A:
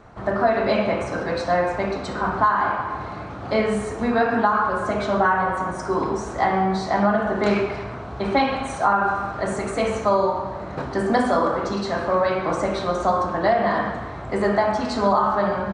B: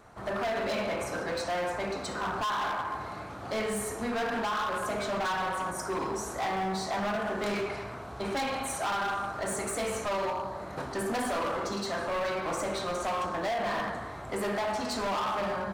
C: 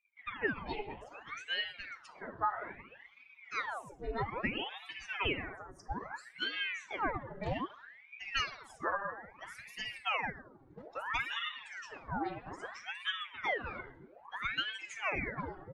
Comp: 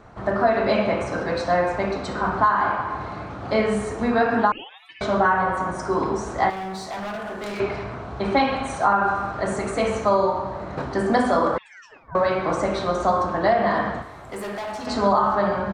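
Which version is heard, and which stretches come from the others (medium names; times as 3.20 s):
A
4.52–5.01 s: from C
6.50–7.60 s: from B
11.58–12.15 s: from C
14.02–14.87 s: from B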